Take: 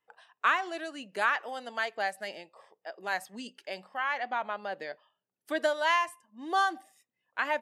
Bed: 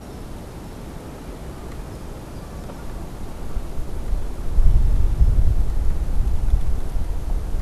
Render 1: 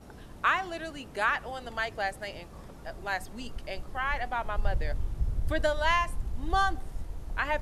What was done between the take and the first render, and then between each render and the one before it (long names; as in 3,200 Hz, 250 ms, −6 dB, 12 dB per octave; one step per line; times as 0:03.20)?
mix in bed −13.5 dB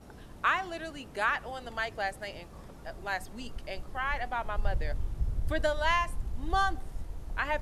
level −1.5 dB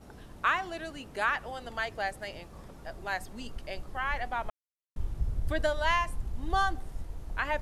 0:04.50–0:04.96: silence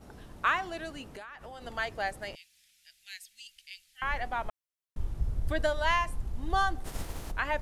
0:01.09–0:01.64: downward compressor 20 to 1, threshold −40 dBFS
0:02.35–0:04.02: inverse Chebyshev high-pass filter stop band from 1,200 Hz
0:06.84–0:07.30: compressing power law on the bin magnitudes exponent 0.66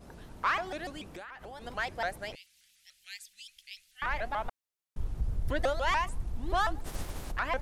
soft clipping −19 dBFS, distortion −19 dB
pitch modulation by a square or saw wave saw up 6.9 Hz, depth 250 cents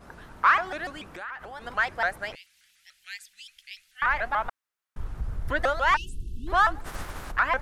0:05.96–0:06.47: time-frequency box erased 450–2,600 Hz
parametric band 1,400 Hz +11 dB 1.5 octaves